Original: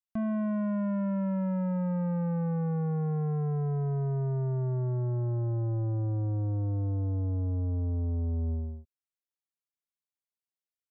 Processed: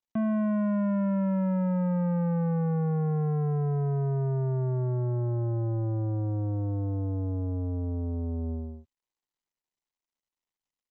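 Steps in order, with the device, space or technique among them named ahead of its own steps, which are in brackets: Bluetooth headset (HPF 110 Hz 12 dB/oct; downsampling 8000 Hz; gain +3.5 dB; SBC 64 kbps 16000 Hz)

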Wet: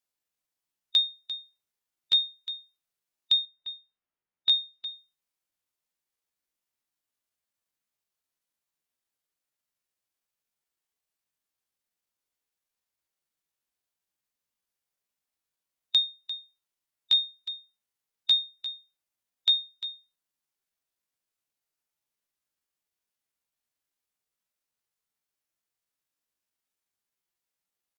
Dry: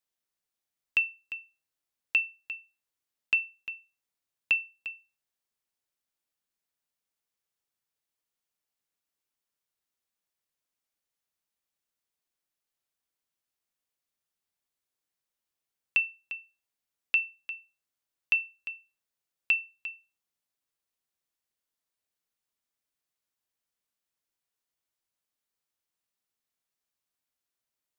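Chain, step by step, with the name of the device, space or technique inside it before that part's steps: chipmunk voice (pitch shift +5.5 st); 3.45–4.92 low-pass opened by the level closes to 2200 Hz, open at -26 dBFS; harmonic-percussive split harmonic +3 dB

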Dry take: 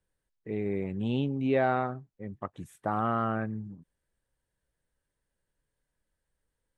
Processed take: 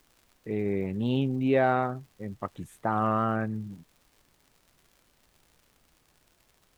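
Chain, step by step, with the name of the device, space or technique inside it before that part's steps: warped LP (record warp 33 1/3 rpm, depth 100 cents; crackle 120/s -50 dBFS; pink noise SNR 36 dB); gain +2.5 dB

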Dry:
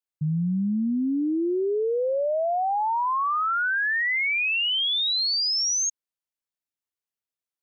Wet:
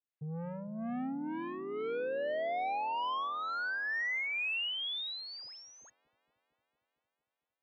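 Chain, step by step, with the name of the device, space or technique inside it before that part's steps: guitar amplifier with harmonic tremolo (harmonic tremolo 2.1 Hz, depth 70%, crossover 650 Hz; soft clip -34.5 dBFS, distortion -9 dB; speaker cabinet 75–3400 Hz, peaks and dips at 87 Hz -7 dB, 190 Hz -10 dB, 360 Hz -9 dB, 1300 Hz -3 dB); dark delay 0.228 s, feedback 75%, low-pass 470 Hz, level -11 dB; gain +2 dB

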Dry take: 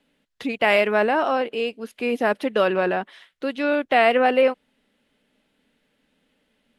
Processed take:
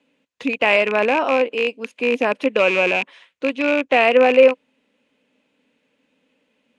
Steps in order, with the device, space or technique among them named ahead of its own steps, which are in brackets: car door speaker with a rattle (rattling part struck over -34 dBFS, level -14 dBFS; speaker cabinet 89–9400 Hz, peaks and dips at 270 Hz +7 dB, 510 Hz +9 dB, 1000 Hz +7 dB, 2500 Hz +9 dB, 6600 Hz +5 dB); gain -2.5 dB

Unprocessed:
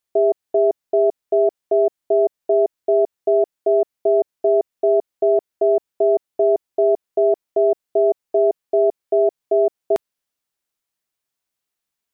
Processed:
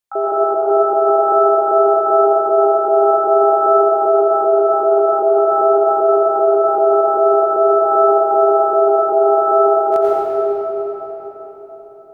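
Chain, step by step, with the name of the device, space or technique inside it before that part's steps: shimmer-style reverb (harmoniser +12 st -7 dB; reverb RT60 4.7 s, pre-delay 83 ms, DRR -7 dB); gain -3.5 dB

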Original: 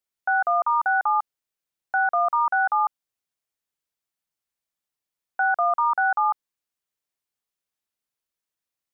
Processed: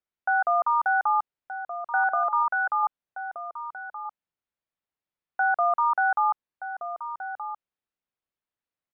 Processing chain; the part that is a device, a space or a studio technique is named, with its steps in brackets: 2.11–2.83 dynamic EQ 770 Hz, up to -7 dB, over -37 dBFS, Q 4; shout across a valley (air absorption 290 m; outdoor echo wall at 210 m, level -9 dB)

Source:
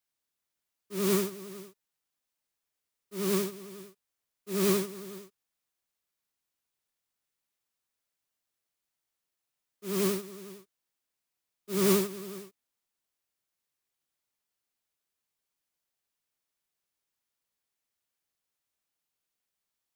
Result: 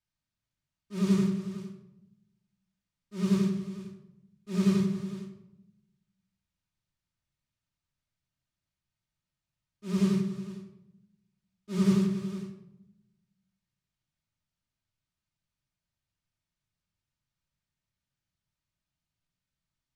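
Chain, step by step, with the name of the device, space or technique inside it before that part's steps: jukebox (LPF 6400 Hz 12 dB/oct; resonant low shelf 230 Hz +13.5 dB, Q 1.5; compressor 3:1, threshold -21 dBFS, peak gain reduction 6.5 dB); shoebox room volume 2700 m³, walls furnished, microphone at 2.7 m; gain -4 dB

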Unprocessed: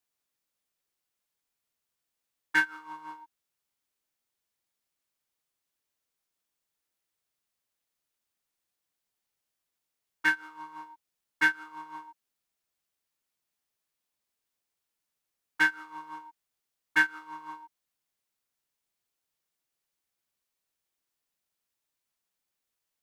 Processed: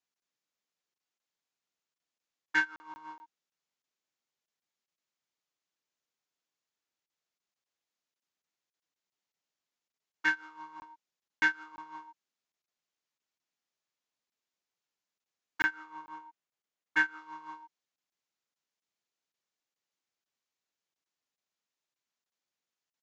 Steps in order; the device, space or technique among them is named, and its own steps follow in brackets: call with lost packets (HPF 140 Hz; downsampling 16000 Hz; packet loss); 15.61–17.19 bell 4900 Hz -4.5 dB 1.3 oct; gain -3 dB

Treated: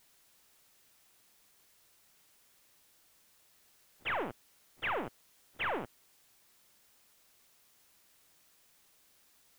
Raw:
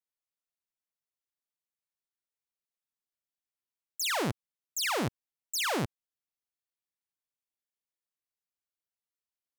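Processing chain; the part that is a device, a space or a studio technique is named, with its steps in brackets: army field radio (BPF 360–3200 Hz; CVSD 16 kbps; white noise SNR 21 dB)

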